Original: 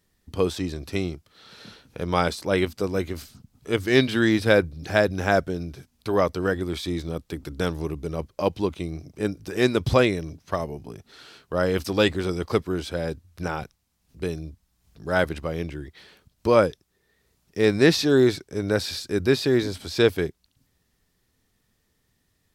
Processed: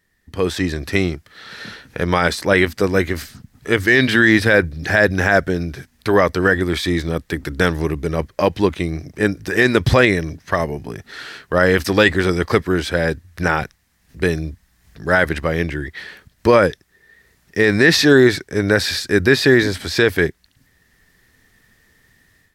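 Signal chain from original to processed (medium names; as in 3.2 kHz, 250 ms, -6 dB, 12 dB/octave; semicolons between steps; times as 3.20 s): peaking EQ 1.8 kHz +12 dB 0.53 oct; peak limiter -10.5 dBFS, peak gain reduction 10 dB; level rider gain up to 11.5 dB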